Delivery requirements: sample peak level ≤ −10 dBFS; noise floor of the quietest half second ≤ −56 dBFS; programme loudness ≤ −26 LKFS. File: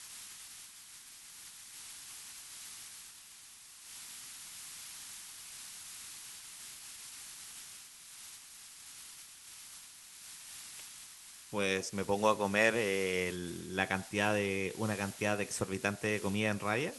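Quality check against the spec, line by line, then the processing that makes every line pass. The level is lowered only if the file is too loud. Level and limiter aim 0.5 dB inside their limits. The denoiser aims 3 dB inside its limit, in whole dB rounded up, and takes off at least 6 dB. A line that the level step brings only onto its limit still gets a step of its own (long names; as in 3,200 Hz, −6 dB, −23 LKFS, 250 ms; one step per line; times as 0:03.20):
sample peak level −13.0 dBFS: in spec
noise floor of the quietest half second −54 dBFS: out of spec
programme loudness −36.0 LKFS: in spec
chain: broadband denoise 6 dB, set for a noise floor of −54 dBFS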